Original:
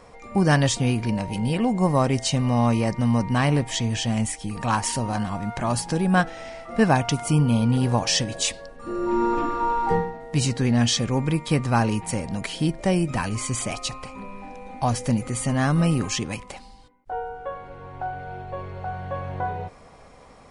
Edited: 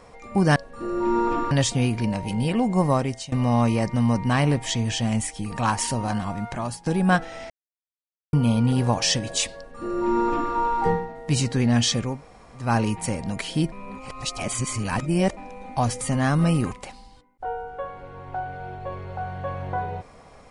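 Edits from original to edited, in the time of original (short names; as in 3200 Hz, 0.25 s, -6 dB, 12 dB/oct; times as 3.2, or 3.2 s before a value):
1.94–2.37 fade out, to -20 dB
5.25–5.91 fade out equal-power, to -17 dB
6.55–7.38 mute
8.62–9.57 copy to 0.56
11.16–11.69 room tone, crossfade 0.24 s
12.77–14.42 reverse
15.06–15.38 cut
16.09–16.39 cut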